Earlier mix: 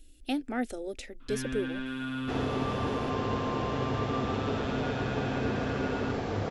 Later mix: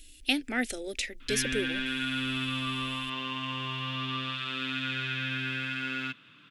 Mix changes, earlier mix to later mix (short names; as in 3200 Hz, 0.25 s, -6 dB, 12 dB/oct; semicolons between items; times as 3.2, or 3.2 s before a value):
second sound: muted; master: add resonant high shelf 1500 Hz +10.5 dB, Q 1.5